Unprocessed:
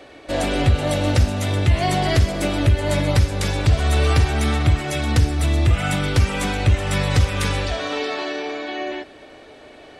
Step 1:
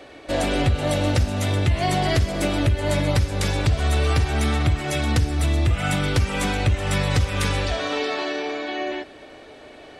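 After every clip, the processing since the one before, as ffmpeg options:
-af "acompressor=threshold=0.141:ratio=2.5"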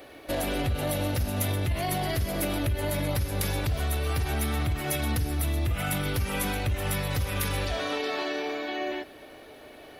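-af "alimiter=limit=0.15:level=0:latency=1:release=24,aexciter=amount=14.2:drive=4.1:freq=11000,volume=0.631"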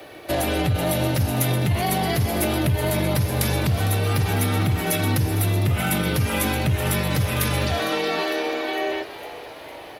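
-filter_complex "[0:a]afreqshift=27,asplit=8[s0][s1][s2][s3][s4][s5][s6][s7];[s1]adelay=455,afreqshift=89,volume=0.178[s8];[s2]adelay=910,afreqshift=178,volume=0.11[s9];[s3]adelay=1365,afreqshift=267,volume=0.0684[s10];[s4]adelay=1820,afreqshift=356,volume=0.0422[s11];[s5]adelay=2275,afreqshift=445,volume=0.0263[s12];[s6]adelay=2730,afreqshift=534,volume=0.0162[s13];[s7]adelay=3185,afreqshift=623,volume=0.0101[s14];[s0][s8][s9][s10][s11][s12][s13][s14]amix=inputs=8:normalize=0,volume=2"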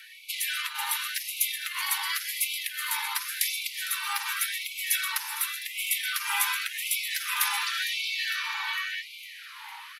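-af "aresample=32000,aresample=44100,afftfilt=real='re*gte(b*sr/1024,780*pow(2100/780,0.5+0.5*sin(2*PI*0.9*pts/sr)))':imag='im*gte(b*sr/1024,780*pow(2100/780,0.5+0.5*sin(2*PI*0.9*pts/sr)))':win_size=1024:overlap=0.75"

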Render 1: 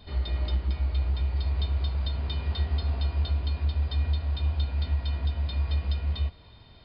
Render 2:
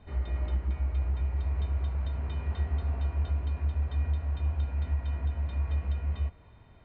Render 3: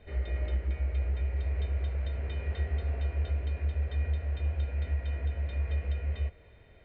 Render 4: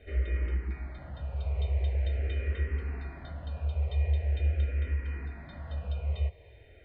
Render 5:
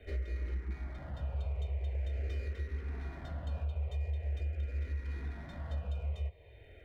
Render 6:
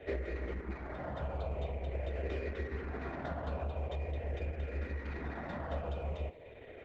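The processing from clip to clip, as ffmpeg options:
-af "lowpass=f=2400:w=0.5412,lowpass=f=2400:w=1.3066,volume=0.75"
-af "equalizer=f=125:t=o:w=1:g=-4,equalizer=f=250:t=o:w=1:g=-5,equalizer=f=500:t=o:w=1:g=9,equalizer=f=1000:t=o:w=1:g=-11,equalizer=f=2000:t=o:w=1:g=7"
-filter_complex "[0:a]asplit=2[s0][s1];[s1]afreqshift=-0.44[s2];[s0][s2]amix=inputs=2:normalize=1,volume=1.5"
-filter_complex "[0:a]alimiter=level_in=1.78:limit=0.0631:level=0:latency=1:release=464,volume=0.562,acrossover=split=310|940[s0][s1][s2];[s2]aeval=exprs='clip(val(0),-1,0.00133)':c=same[s3];[s0][s1][s3]amix=inputs=3:normalize=0"
-af "bandpass=f=670:t=q:w=0.55:csg=0,volume=3.76" -ar 48000 -c:a libopus -b:a 10k

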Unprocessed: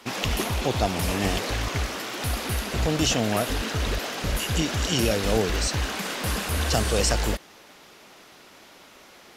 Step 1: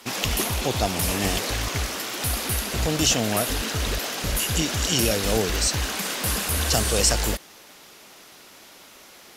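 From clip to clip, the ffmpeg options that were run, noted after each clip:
-af "aemphasis=mode=production:type=cd"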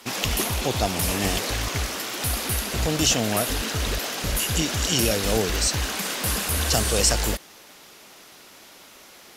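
-af anull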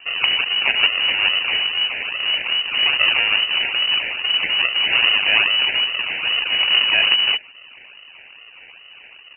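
-af "aresample=11025,acrusher=samples=11:mix=1:aa=0.000001:lfo=1:lforange=11:lforate=2.4,aresample=44100,lowpass=f=2600:t=q:w=0.5098,lowpass=f=2600:t=q:w=0.6013,lowpass=f=2600:t=q:w=0.9,lowpass=f=2600:t=q:w=2.563,afreqshift=-3000,volume=2.11"

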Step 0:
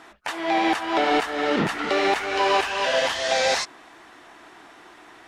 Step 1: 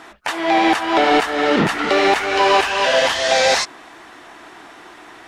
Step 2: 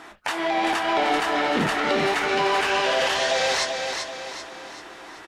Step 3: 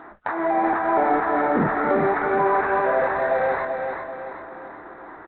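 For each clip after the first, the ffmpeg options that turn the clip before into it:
-af "acontrast=74"
-filter_complex "[0:a]alimiter=limit=0.237:level=0:latency=1:release=38,asplit=2[s0][s1];[s1]adelay=26,volume=0.282[s2];[s0][s2]amix=inputs=2:normalize=0,aecho=1:1:387|774|1161|1548|1935|2322:0.531|0.244|0.112|0.0517|0.0238|0.0109,volume=0.708"
-af "asuperstop=centerf=3100:order=4:qfactor=0.74,volume=1.41" -ar 8000 -c:a adpcm_g726 -b:a 40k

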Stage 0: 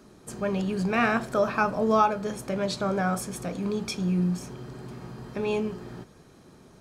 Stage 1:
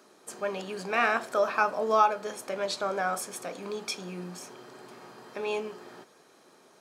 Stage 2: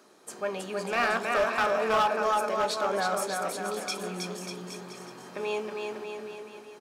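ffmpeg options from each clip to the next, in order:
-af "highpass=460"
-filter_complex "[0:a]asplit=2[s0][s1];[s1]aecho=0:1:320|592|823.2|1020|1187:0.631|0.398|0.251|0.158|0.1[s2];[s0][s2]amix=inputs=2:normalize=0,asoftclip=type=hard:threshold=0.1"

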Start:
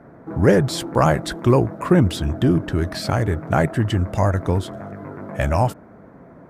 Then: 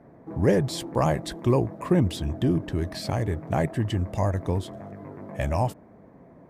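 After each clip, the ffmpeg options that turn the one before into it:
-af "equalizer=f=1400:t=o:w=0.32:g=-11,volume=0.501"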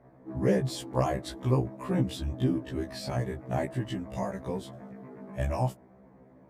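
-af "afftfilt=real='re*1.73*eq(mod(b,3),0)':imag='im*1.73*eq(mod(b,3),0)':win_size=2048:overlap=0.75,volume=0.75"

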